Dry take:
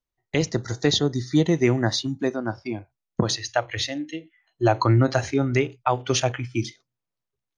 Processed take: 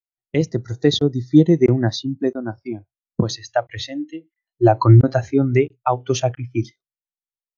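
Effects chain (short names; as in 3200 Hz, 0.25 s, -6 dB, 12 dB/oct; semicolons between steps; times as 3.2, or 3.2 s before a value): crackling interface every 0.67 s, samples 1024, zero, from 0.32; spectral expander 1.5:1; gain +6 dB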